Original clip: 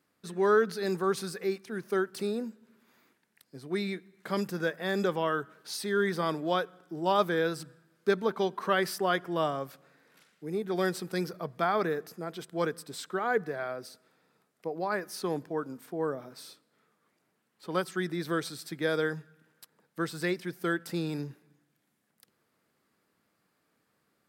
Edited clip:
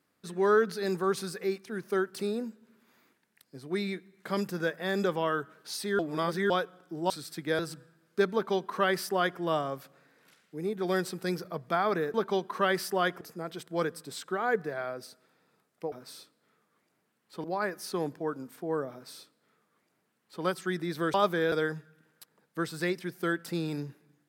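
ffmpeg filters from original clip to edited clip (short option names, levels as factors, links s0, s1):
-filter_complex "[0:a]asplit=11[s0][s1][s2][s3][s4][s5][s6][s7][s8][s9][s10];[s0]atrim=end=5.992[s11];[s1]atrim=start=5.988:end=6.502,asetpts=PTS-STARTPTS,areverse[s12];[s2]atrim=start=6.498:end=7.102[s13];[s3]atrim=start=18.438:end=18.932[s14];[s4]atrim=start=7.478:end=12.032[s15];[s5]atrim=start=8.218:end=9.292[s16];[s6]atrim=start=12.028:end=14.742[s17];[s7]atrim=start=16.218:end=17.742[s18];[s8]atrim=start=14.738:end=18.442[s19];[s9]atrim=start=7.098:end=7.482[s20];[s10]atrim=start=18.928[s21];[s11][s12]acrossfade=d=0.004:c1=hsin:c2=hsin[s22];[s22][s13]acrossfade=d=0.004:c1=hsin:c2=hsin[s23];[s23][s14]acrossfade=d=0.004:c1=hsin:c2=hsin[s24];[s24][s15]acrossfade=d=0.004:c1=hsin:c2=hsin[s25];[s25][s16]acrossfade=d=0.004:c1=hsin:c2=hsin[s26];[s26][s17]acrossfade=d=0.004:c1=hsin:c2=hsin[s27];[s27][s18]acrossfade=d=0.004:c1=hsin:c2=hsin[s28];[s28][s19]acrossfade=d=0.004:c1=hsin:c2=hsin[s29];[s29][s20]acrossfade=d=0.004:c1=hsin:c2=hsin[s30];[s30][s21]acrossfade=d=0.004:c1=hsin:c2=hsin"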